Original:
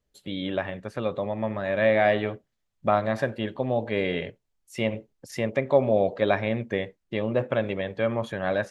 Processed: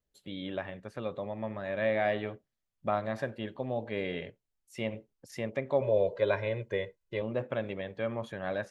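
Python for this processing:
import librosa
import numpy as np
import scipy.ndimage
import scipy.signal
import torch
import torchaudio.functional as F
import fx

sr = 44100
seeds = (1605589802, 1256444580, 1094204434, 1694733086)

y = fx.comb(x, sr, ms=2.0, depth=0.83, at=(5.81, 7.22))
y = F.gain(torch.from_numpy(y), -8.0).numpy()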